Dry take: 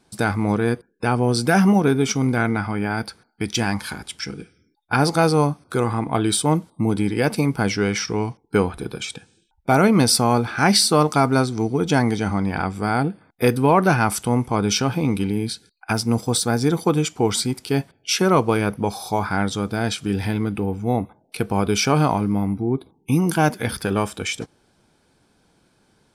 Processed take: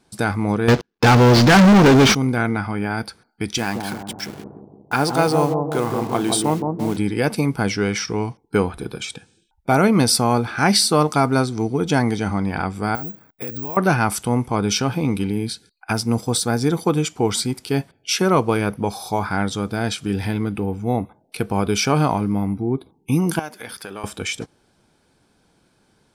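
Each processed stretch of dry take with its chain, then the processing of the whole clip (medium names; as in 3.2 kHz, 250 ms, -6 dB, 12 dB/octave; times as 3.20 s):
0.68–2.15 s: CVSD coder 32 kbps + peaking EQ 560 Hz -9 dB 0.22 oct + waveshaping leveller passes 5
3.58–6.97 s: send-on-delta sampling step -32.5 dBFS + high-pass 190 Hz 6 dB/octave + bucket-brigade echo 170 ms, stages 1024, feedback 54%, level -3.5 dB
12.95–13.77 s: compression 8:1, threshold -29 dBFS + careless resampling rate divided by 2×, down filtered, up zero stuff
23.39–24.04 s: high-pass 590 Hz 6 dB/octave + compression 2:1, threshold -34 dBFS
whole clip: none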